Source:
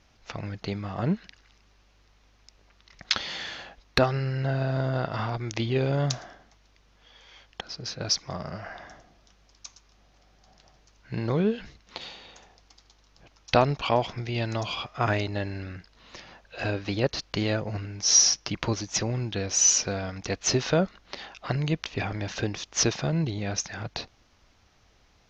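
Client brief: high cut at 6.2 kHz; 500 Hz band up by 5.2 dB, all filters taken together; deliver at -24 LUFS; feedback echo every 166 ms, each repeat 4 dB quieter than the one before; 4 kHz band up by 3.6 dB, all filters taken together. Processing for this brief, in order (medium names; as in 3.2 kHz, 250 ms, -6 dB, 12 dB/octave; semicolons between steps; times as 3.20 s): low-pass 6.2 kHz; peaking EQ 500 Hz +6.5 dB; peaking EQ 4 kHz +6.5 dB; feedback delay 166 ms, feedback 63%, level -4 dB; trim -1 dB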